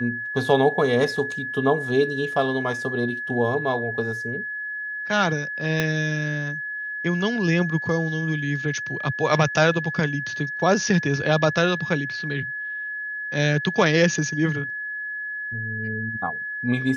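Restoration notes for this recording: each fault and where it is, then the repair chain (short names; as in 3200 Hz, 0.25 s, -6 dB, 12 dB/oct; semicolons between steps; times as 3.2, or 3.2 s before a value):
tone 1700 Hz -28 dBFS
5.8 pop -8 dBFS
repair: de-click; notch 1700 Hz, Q 30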